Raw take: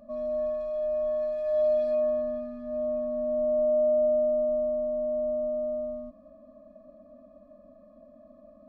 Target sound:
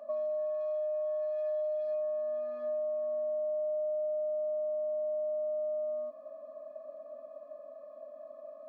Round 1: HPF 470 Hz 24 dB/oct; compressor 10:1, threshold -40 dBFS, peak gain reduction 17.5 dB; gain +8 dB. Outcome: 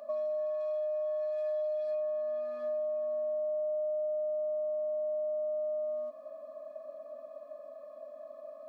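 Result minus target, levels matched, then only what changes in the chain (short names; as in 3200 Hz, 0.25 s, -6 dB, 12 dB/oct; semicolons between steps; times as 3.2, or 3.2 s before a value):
2000 Hz band +3.5 dB
add after HPF: high shelf 2100 Hz -9.5 dB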